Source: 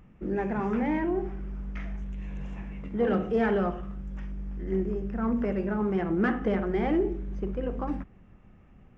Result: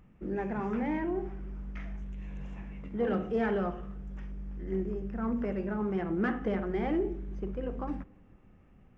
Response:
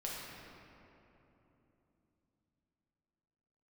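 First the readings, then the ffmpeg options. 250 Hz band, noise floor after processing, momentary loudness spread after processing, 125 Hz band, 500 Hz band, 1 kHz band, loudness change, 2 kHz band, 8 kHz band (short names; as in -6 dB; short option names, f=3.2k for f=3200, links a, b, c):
-4.5 dB, -58 dBFS, 13 LU, -4.5 dB, -4.5 dB, -4.0 dB, -4.5 dB, -4.5 dB, n/a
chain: -filter_complex "[0:a]asplit=2[a][b];[1:a]atrim=start_sample=2205,asetrate=66150,aresample=44100[c];[b][c]afir=irnorm=-1:irlink=0,volume=-23.5dB[d];[a][d]amix=inputs=2:normalize=0,volume=-4.5dB"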